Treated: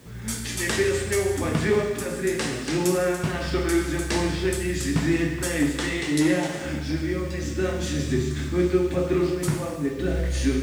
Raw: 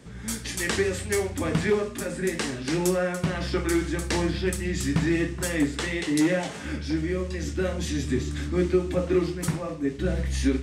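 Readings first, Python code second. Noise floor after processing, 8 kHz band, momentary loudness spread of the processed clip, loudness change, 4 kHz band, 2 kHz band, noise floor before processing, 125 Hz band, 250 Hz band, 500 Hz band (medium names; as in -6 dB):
-32 dBFS, +2.0 dB, 5 LU, +2.0 dB, +2.0 dB, +2.0 dB, -37 dBFS, +1.5 dB, +1.5 dB, +2.5 dB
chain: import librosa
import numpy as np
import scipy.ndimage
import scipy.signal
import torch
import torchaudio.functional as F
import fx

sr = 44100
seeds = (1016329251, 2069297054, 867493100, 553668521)

y = fx.quant_dither(x, sr, seeds[0], bits=10, dither='triangular')
y = fx.rev_gated(y, sr, seeds[1], gate_ms=450, shape='falling', drr_db=2.5)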